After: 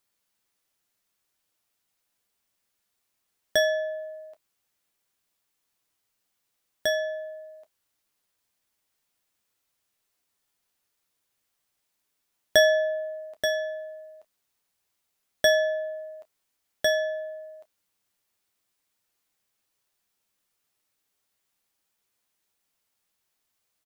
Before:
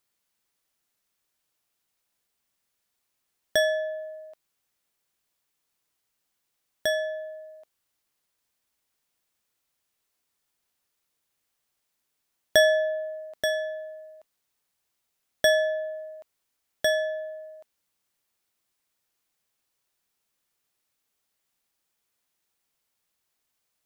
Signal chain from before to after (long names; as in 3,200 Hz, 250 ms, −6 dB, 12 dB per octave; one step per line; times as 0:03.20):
ambience of single reflections 10 ms −9.5 dB, 30 ms −17 dB